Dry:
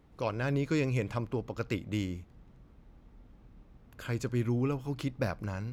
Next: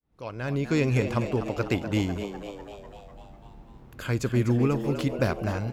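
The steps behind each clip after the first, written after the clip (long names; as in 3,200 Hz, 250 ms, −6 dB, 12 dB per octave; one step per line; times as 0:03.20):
fade in at the beginning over 0.92 s
on a send: echo with shifted repeats 249 ms, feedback 60%, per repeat +100 Hz, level −10 dB
on the sum: level +6.5 dB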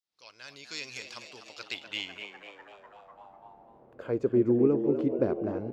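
band-pass filter sweep 4,800 Hz → 370 Hz, 0:01.49–0:04.38
level +5.5 dB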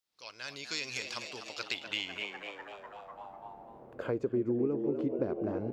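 downward compressor 3 to 1, threshold −36 dBFS, peak gain reduction 13.5 dB
level +4.5 dB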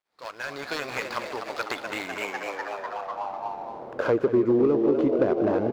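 running median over 15 samples
mid-hump overdrive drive 14 dB, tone 2,900 Hz, clips at −19 dBFS
slap from a distant wall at 32 metres, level −14 dB
level +8.5 dB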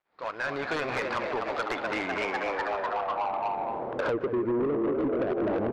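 low-pass filter 2,400 Hz 12 dB per octave
downward compressor 8 to 1, threshold −26 dBFS, peak gain reduction 9.5 dB
soft clipping −29 dBFS, distortion −12 dB
level +6 dB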